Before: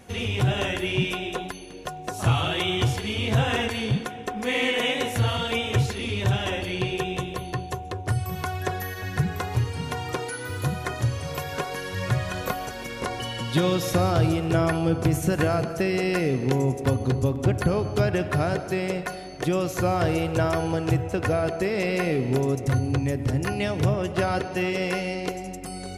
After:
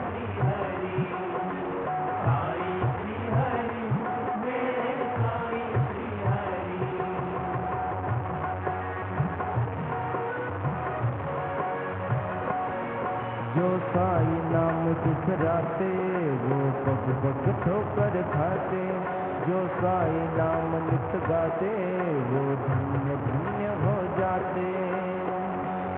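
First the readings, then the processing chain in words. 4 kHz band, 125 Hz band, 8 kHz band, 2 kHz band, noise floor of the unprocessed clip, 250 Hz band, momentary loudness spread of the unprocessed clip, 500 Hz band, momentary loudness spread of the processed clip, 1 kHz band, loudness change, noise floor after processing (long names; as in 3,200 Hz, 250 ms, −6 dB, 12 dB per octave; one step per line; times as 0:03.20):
below −15 dB, −3.5 dB, below −40 dB, −5.5 dB, −36 dBFS, −2.5 dB, 8 LU, −1.0 dB, 5 LU, +2.5 dB, −2.5 dB, −32 dBFS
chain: linear delta modulator 16 kbit/s, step −21 dBFS
Chebyshev band-pass filter 110–990 Hz, order 2
tilt shelving filter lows −3.5 dB, about 750 Hz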